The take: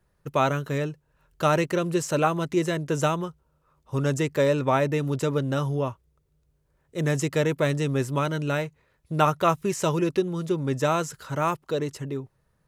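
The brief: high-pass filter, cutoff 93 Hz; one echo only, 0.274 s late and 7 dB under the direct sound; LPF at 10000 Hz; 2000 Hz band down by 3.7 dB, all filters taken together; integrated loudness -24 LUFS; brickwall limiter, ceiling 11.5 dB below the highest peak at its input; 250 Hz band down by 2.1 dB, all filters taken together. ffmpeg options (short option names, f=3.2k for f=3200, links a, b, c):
-af "highpass=93,lowpass=10k,equalizer=f=250:t=o:g=-3,equalizer=f=2k:t=o:g=-5,alimiter=limit=-19dB:level=0:latency=1,aecho=1:1:274:0.447,volume=5.5dB"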